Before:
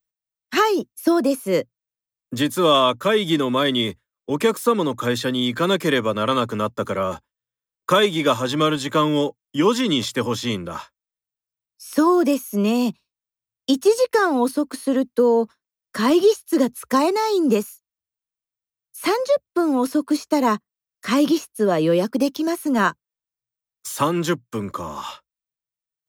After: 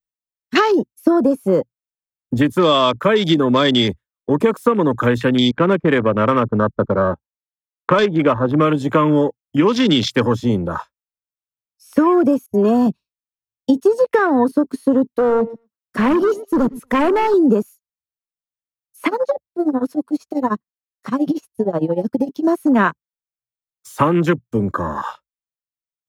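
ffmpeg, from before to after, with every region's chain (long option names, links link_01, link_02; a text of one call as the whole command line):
ffmpeg -i in.wav -filter_complex "[0:a]asettb=1/sr,asplit=3[link_01][link_02][link_03];[link_01]atrim=end=5.514[link_04];[link_02]atrim=start=5.51:end=8.65,asetpts=PTS-STARTPTS,afade=type=in:duration=0.004:curve=qsin,afade=type=out:start_time=3.136:duration=0.004:curve=qsin,agate=range=-15dB:threshold=-30dB:ratio=16:release=100:detection=peak,adynamicsmooth=sensitivity=1:basefreq=1300[link_05];[link_03]atrim=start=8.646[link_06];[link_04][link_05]acrossfade=duration=0.004:curve1=hsin:curve2=qsin[link_07];[link_07][link_06]acrossfade=duration=0.004:curve1=qsin:curve2=hsin,asettb=1/sr,asplit=3[link_08][link_09][link_10];[link_08]atrim=end=12.464[link_11];[link_09]atrim=start=12.46:end=12.87,asetpts=PTS-STARTPTS,afade=type=in:duration=0.004:curve=qsin,afade=type=out:start_time=0.406:duration=0.004:curve=qsin,agate=range=-30dB:threshold=-33dB:ratio=16:release=100:detection=peak,aecho=1:1:2.8:0.59,atrim=end_sample=18081[link_12];[link_10]atrim=start=12.866[link_13];[link_11][link_12]acrossfade=duration=0.004:curve1=hsin:curve2=qsin[link_14];[link_14][link_13]acrossfade=duration=0.004:curve1=qsin:curve2=hsin,asettb=1/sr,asplit=3[link_15][link_16][link_17];[link_15]atrim=end=15.094[link_18];[link_16]atrim=start=15.09:end=17.34,asetpts=PTS-STARTPTS,afade=type=in:duration=0.004:curve=qsin,afade=type=out:start_time=2.246:duration=0.004:curve=qsin,highpass=49,asoftclip=type=hard:threshold=-20.5dB,asplit=2[link_19][link_20];[link_20]adelay=115,lowpass=frequency=1700:poles=1,volume=-15dB,asplit=2[link_21][link_22];[link_22]adelay=115,lowpass=frequency=1700:poles=1,volume=0.2[link_23];[link_19][link_21][link_23]amix=inputs=3:normalize=0,atrim=end_sample=99225[link_24];[link_17]atrim=start=17.336[link_25];[link_18][link_24]acrossfade=duration=0.004:curve1=hsin:curve2=qsin[link_26];[link_26][link_25]acrossfade=duration=0.004:curve1=qsin:curve2=hsin,asettb=1/sr,asplit=3[link_27][link_28][link_29];[link_27]atrim=end=19.074[link_30];[link_28]atrim=start=19.07:end=22.45,asetpts=PTS-STARTPTS,afade=type=in:duration=0.004:curve=qsin,afade=type=out:start_time=3.376:duration=0.004:curve=qsin,acompressor=threshold=-19dB:ratio=8:attack=3.2:release=140:knee=1:detection=peak,tremolo=f=13:d=0.85[link_31];[link_29]atrim=start=22.446[link_32];[link_30][link_31]acrossfade=duration=0.004:curve1=hsin:curve2=qsin[link_33];[link_33][link_32]acrossfade=duration=0.004:curve1=qsin:curve2=hsin,afwtdn=0.0355,lowshelf=frequency=170:gain=4,acompressor=threshold=-18dB:ratio=6,volume=7.5dB" out.wav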